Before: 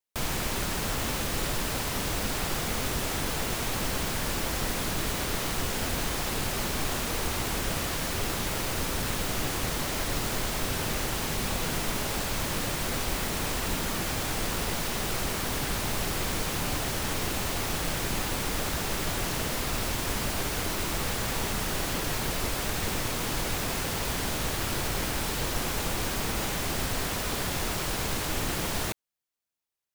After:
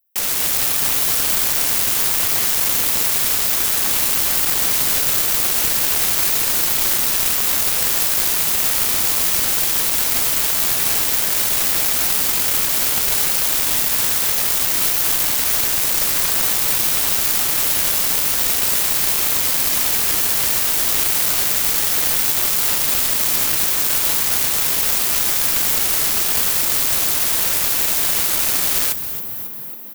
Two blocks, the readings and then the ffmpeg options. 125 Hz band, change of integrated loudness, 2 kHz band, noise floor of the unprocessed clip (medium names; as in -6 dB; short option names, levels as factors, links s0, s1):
-3.5 dB, +15.0 dB, +7.0 dB, -32 dBFS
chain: -filter_complex "[0:a]asplit=9[s0][s1][s2][s3][s4][s5][s6][s7][s8];[s1]adelay=273,afreqshift=45,volume=0.398[s9];[s2]adelay=546,afreqshift=90,volume=0.245[s10];[s3]adelay=819,afreqshift=135,volume=0.153[s11];[s4]adelay=1092,afreqshift=180,volume=0.0944[s12];[s5]adelay=1365,afreqshift=225,volume=0.0589[s13];[s6]adelay=1638,afreqshift=270,volume=0.0363[s14];[s7]adelay=1911,afreqshift=315,volume=0.0226[s15];[s8]adelay=2184,afreqshift=360,volume=0.014[s16];[s0][s9][s10][s11][s12][s13][s14][s15][s16]amix=inputs=9:normalize=0,aexciter=amount=14.3:drive=4.2:freq=11000,aeval=exprs='0.794*(cos(1*acos(clip(val(0)/0.794,-1,1)))-cos(1*PI/2))+0.251*(cos(7*acos(clip(val(0)/0.794,-1,1)))-cos(7*PI/2))':c=same,volume=0.841"